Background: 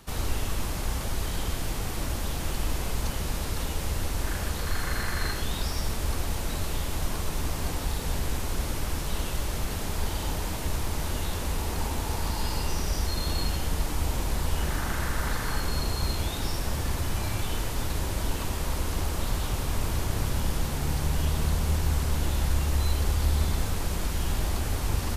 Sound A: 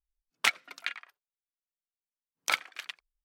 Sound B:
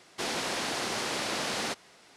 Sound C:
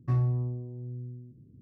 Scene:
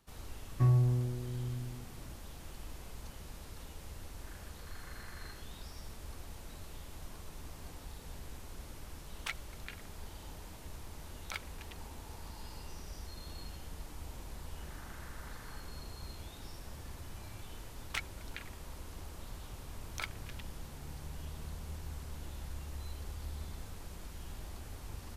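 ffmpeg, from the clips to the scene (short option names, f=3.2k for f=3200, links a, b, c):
-filter_complex "[1:a]asplit=2[a][b];[0:a]volume=-18dB[c];[3:a]atrim=end=1.61,asetpts=PTS-STARTPTS,afade=t=in:d=0.004:c=hsin,afade=t=out:st=1.606:d=0.004:c=hsin,adelay=520[d];[a]atrim=end=3.24,asetpts=PTS-STARTPTS,volume=-14dB,afade=t=in:d=0.004:c=hsin,afade=t=out:st=3.236:d=0.004:c=hsin,adelay=388962S[e];[b]atrim=end=3.24,asetpts=PTS-STARTPTS,volume=-12.5dB,afade=t=in:d=0.004:c=hsin,afade=t=out:st=3.236:d=0.004:c=hsin,adelay=17500[f];[c][d][e][f]amix=inputs=4:normalize=0"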